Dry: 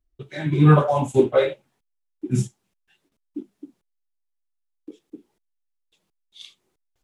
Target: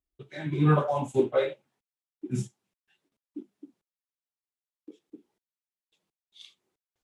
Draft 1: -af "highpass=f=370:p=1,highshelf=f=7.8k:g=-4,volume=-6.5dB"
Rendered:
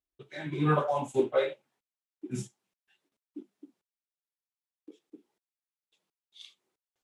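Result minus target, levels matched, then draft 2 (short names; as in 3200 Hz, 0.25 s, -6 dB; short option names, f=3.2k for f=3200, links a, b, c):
125 Hz band -3.5 dB
-af "highpass=f=120:p=1,highshelf=f=7.8k:g=-4,volume=-6.5dB"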